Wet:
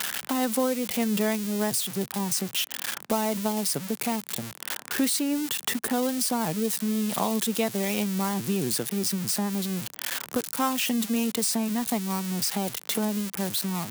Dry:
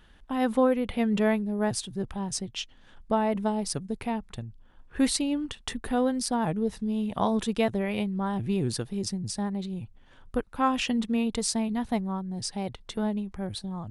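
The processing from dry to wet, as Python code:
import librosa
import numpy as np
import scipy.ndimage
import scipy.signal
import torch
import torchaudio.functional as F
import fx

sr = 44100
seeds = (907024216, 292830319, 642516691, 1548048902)

y = x + 0.5 * 10.0 ** (-20.5 / 20.0) * np.diff(np.sign(x), prepend=np.sign(x[:1]))
y = scipy.signal.sosfilt(scipy.signal.butter(4, 140.0, 'highpass', fs=sr, output='sos'), y)
y = fx.band_squash(y, sr, depth_pct=70)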